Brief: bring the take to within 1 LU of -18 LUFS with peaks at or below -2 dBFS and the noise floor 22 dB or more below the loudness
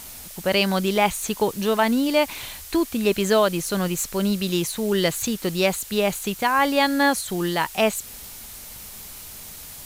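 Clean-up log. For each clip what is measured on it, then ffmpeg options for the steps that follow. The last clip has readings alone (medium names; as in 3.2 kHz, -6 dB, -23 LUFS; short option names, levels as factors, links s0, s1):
noise floor -40 dBFS; noise floor target -44 dBFS; loudness -22.0 LUFS; peak level -7.5 dBFS; loudness target -18.0 LUFS
-> -af "afftdn=nr=6:nf=-40"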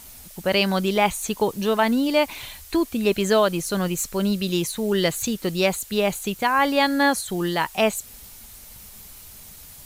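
noise floor -44 dBFS; noise floor target -45 dBFS
-> -af "afftdn=nr=6:nf=-44"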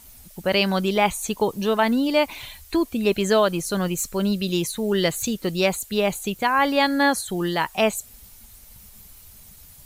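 noise floor -48 dBFS; loudness -22.5 LUFS; peak level -7.5 dBFS; loudness target -18.0 LUFS
-> -af "volume=1.68"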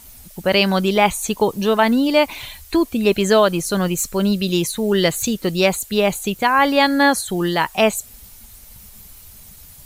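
loudness -18.0 LUFS; peak level -3.0 dBFS; noise floor -43 dBFS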